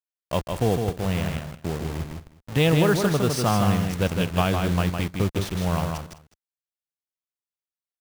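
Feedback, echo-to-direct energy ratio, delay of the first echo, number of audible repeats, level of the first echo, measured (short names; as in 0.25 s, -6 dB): no steady repeat, -4.5 dB, 0.158 s, 3, -5.0 dB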